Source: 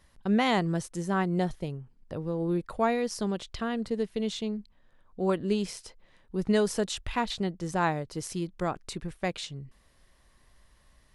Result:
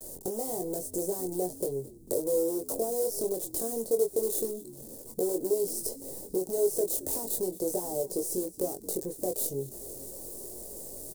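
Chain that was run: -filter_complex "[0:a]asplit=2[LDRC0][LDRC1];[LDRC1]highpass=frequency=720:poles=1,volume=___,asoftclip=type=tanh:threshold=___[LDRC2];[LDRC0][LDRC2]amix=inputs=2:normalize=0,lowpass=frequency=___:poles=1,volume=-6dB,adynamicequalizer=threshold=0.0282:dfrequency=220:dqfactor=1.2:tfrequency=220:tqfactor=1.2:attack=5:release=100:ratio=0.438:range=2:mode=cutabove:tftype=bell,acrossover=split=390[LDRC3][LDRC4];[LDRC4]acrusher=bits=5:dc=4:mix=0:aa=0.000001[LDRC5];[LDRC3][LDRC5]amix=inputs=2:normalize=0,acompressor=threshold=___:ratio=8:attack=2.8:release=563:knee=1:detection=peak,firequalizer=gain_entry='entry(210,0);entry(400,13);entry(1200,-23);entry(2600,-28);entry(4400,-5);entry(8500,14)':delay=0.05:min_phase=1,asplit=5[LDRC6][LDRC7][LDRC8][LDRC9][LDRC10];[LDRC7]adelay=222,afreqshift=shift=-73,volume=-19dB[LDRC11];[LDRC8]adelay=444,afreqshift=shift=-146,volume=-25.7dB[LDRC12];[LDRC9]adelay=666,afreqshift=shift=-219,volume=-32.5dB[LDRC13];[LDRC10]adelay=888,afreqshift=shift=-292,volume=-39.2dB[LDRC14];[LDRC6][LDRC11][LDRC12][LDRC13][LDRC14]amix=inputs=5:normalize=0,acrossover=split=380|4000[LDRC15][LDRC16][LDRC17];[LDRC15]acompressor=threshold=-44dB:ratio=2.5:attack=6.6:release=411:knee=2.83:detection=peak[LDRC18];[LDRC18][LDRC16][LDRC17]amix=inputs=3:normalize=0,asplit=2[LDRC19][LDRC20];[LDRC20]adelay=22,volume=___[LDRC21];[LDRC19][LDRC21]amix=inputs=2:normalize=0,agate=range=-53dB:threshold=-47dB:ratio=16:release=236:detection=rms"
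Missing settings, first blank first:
31dB, -12.5dB, 1800, -30dB, -4.5dB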